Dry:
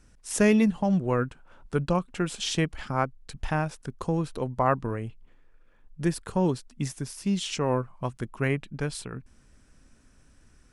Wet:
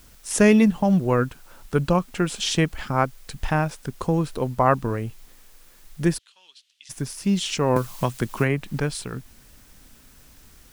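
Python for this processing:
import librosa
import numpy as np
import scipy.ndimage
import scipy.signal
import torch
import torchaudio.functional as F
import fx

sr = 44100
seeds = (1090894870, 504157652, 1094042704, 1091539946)

y = fx.quant_dither(x, sr, seeds[0], bits=10, dither='triangular')
y = fx.ladder_bandpass(y, sr, hz=3600.0, resonance_pct=55, at=(6.17, 6.89), fade=0.02)
y = fx.band_squash(y, sr, depth_pct=100, at=(7.76, 8.8))
y = y * librosa.db_to_amplitude(5.0)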